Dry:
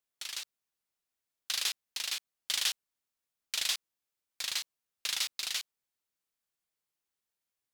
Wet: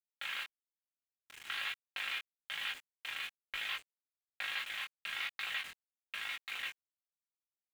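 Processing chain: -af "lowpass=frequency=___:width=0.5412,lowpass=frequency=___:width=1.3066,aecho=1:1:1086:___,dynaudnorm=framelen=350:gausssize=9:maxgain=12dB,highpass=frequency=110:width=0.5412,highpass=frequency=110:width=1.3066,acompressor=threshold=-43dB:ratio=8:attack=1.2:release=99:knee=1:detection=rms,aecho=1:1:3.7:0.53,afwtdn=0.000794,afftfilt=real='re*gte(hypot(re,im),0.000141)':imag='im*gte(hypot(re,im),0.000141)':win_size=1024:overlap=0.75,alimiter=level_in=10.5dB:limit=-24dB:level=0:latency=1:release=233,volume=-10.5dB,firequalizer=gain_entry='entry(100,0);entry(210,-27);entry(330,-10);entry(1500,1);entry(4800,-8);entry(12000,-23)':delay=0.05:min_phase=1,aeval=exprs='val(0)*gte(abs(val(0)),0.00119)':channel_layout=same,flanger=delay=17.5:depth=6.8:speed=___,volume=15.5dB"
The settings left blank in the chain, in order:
3000, 3000, 0.0891, 1.1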